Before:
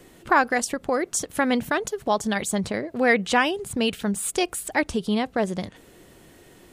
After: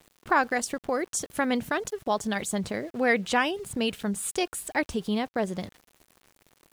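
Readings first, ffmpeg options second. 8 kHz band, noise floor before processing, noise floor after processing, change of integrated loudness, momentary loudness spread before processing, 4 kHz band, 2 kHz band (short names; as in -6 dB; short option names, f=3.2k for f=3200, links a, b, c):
-4.0 dB, -52 dBFS, -72 dBFS, -4.0 dB, 6 LU, -4.0 dB, -4.0 dB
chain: -af "aeval=exprs='val(0)*gte(abs(val(0)),0.00668)':c=same,volume=-4dB"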